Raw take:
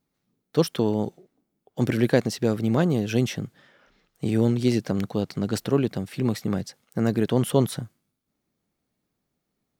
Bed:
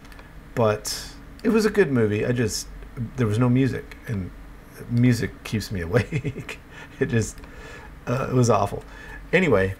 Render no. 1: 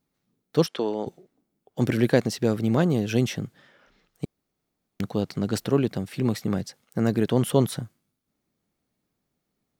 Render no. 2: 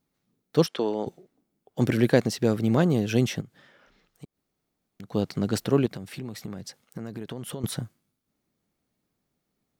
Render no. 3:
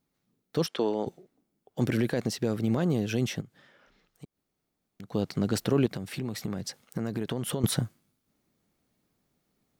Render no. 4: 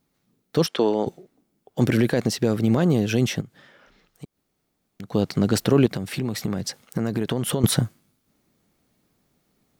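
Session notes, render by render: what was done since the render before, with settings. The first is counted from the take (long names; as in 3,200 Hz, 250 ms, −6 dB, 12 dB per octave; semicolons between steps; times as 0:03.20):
0:00.66–0:01.07: band-pass filter 350–5,800 Hz; 0:04.25–0:05.00: fill with room tone
0:03.41–0:05.12: downward compressor 2 to 1, threshold −49 dBFS; 0:05.86–0:07.64: downward compressor, threshold −32 dBFS
brickwall limiter −14 dBFS, peak gain reduction 9.5 dB; speech leveller within 5 dB 2 s
level +7 dB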